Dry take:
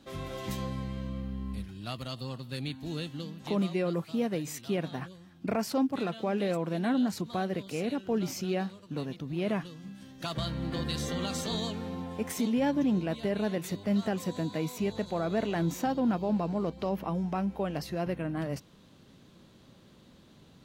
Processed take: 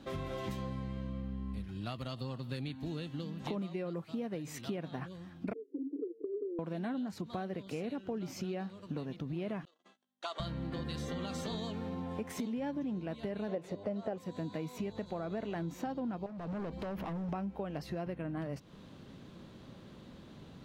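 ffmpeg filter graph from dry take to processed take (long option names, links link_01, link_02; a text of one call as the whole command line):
ffmpeg -i in.wav -filter_complex "[0:a]asettb=1/sr,asplit=3[link_01][link_02][link_03];[link_01]atrim=end=5.534[link_04];[link_02]atrim=start=5.53:end=6.59,asetpts=PTS-STARTPTS,afade=type=in:duration=0.004:curve=qsin,afade=type=out:start_time=1.056:duration=0.004:curve=qsin,asoftclip=type=hard:threshold=-23dB,asuperpass=centerf=360:order=12:qfactor=2[link_05];[link_03]atrim=start=6.586[link_06];[link_04][link_05]acrossfade=duration=0.004:curve1=hsin:curve2=qsin[link_07];[link_07][link_06]acrossfade=duration=0.004:curve1=qsin:curve2=hsin,asettb=1/sr,asplit=3[link_08][link_09][link_10];[link_08]atrim=end=9.654[link_11];[link_09]atrim=start=9.65:end=10.4,asetpts=PTS-STARTPTS,afade=type=in:duration=0.004:curve=qsin,afade=type=out:start_time=0.746:duration=0.004:curve=qsin,agate=range=-35dB:threshold=-44dB:ratio=16:release=100:detection=peak,aeval=exprs='val(0)+0.00178*(sin(2*PI*50*n/s)+sin(2*PI*2*50*n/s)/2+sin(2*PI*3*50*n/s)/3+sin(2*PI*4*50*n/s)/4+sin(2*PI*5*50*n/s)/5)':channel_layout=same,highpass=frequency=500:width=0.5412,highpass=frequency=500:width=1.3066,equalizer=frequency=520:width_type=q:width=4:gain=-8,equalizer=frequency=830:width_type=q:width=4:gain=-3,equalizer=frequency=1700:width_type=q:width=4:gain=-8,equalizer=frequency=2500:width_type=q:width=4:gain=-7,equalizer=frequency=5100:width_type=q:width=4:gain=-8,lowpass=frequency=8500:width=0.5412,lowpass=frequency=8500:width=1.3066[link_12];[link_10]atrim=start=10.396[link_13];[link_11][link_12]acrossfade=duration=0.004:curve1=hsin:curve2=qsin[link_14];[link_14][link_13]acrossfade=duration=0.004:curve1=qsin:curve2=hsin,asettb=1/sr,asplit=3[link_15][link_16][link_17];[link_15]atrim=end=13.484[link_18];[link_16]atrim=start=13.48:end=14.18,asetpts=PTS-STARTPTS,afade=type=in:duration=0.004:curve=qsin,afade=type=out:start_time=0.696:duration=0.004:curve=qsin,lowpass=10000,equalizer=frequency=570:width_type=o:width=1.3:gain=13.5[link_19];[link_17]atrim=start=14.176[link_20];[link_18][link_19]acrossfade=duration=0.004:curve1=hsin:curve2=qsin[link_21];[link_21][link_20]acrossfade=duration=0.004:curve1=qsin:curve2=hsin,asettb=1/sr,asplit=3[link_22][link_23][link_24];[link_22]atrim=end=16.264[link_25];[link_23]atrim=start=16.26:end=17.29,asetpts=PTS-STARTPTS,afade=type=in:duration=0.004:curve=qsin,afade=type=out:start_time=1.026:duration=0.004:curve=qsin,acompressor=threshold=-33dB:ratio=10:attack=3.2:release=140:knee=1:detection=peak,asoftclip=type=hard:threshold=-39dB[link_26];[link_24]atrim=start=17.286[link_27];[link_25][link_26]acrossfade=duration=0.004:curve1=hsin:curve2=qsin[link_28];[link_28][link_27]acrossfade=duration=0.004:curve1=qsin:curve2=hsin,highshelf=frequency=4200:gain=-10,acompressor=threshold=-41dB:ratio=6,volume=5dB" out.wav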